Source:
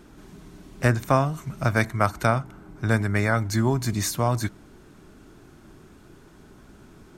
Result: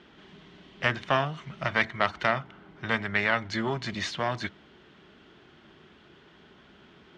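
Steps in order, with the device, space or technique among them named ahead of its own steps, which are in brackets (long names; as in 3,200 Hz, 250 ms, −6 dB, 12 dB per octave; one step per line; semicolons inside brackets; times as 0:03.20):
guitar amplifier (tube saturation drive 13 dB, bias 0.55; bass and treble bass −3 dB, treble +14 dB; loudspeaker in its box 85–3,500 Hz, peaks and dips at 110 Hz −9 dB, 290 Hz −6 dB, 1,900 Hz +6 dB, 3,100 Hz +9 dB)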